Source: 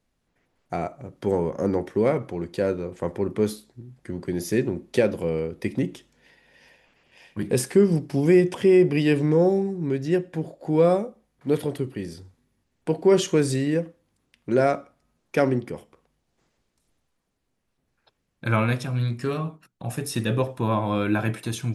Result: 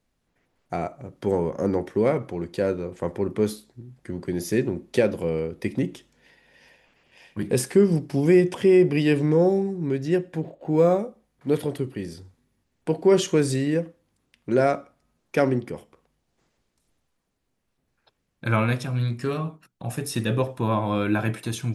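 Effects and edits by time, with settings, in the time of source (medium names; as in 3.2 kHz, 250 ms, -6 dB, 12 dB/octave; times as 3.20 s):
10.40–10.99 s: decimation joined by straight lines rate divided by 6×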